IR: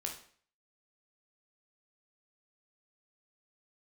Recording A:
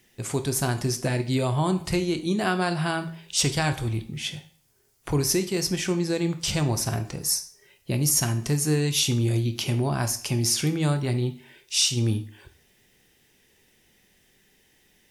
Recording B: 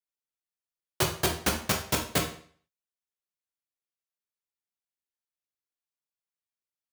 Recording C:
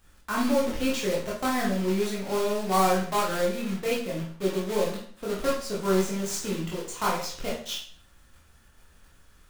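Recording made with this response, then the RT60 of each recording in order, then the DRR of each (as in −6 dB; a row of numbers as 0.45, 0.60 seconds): B; 0.50, 0.50, 0.50 seconds; 8.0, 1.0, −5.5 decibels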